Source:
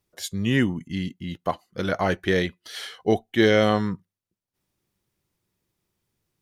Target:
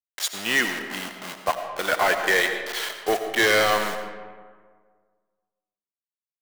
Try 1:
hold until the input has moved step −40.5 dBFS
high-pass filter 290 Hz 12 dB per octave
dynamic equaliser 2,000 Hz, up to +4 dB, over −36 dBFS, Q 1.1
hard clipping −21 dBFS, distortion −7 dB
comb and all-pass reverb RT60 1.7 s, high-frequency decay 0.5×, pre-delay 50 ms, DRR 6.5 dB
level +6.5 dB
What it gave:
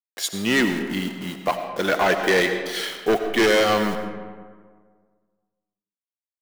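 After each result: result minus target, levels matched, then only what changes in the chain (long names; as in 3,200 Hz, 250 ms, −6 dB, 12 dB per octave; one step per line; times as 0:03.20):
250 Hz band +8.5 dB; hold until the input has moved: distortion −9 dB
change: high-pass filter 660 Hz 12 dB per octave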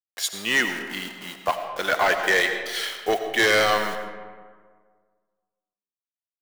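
hold until the input has moved: distortion −9 dB
change: hold until the input has moved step −31.5 dBFS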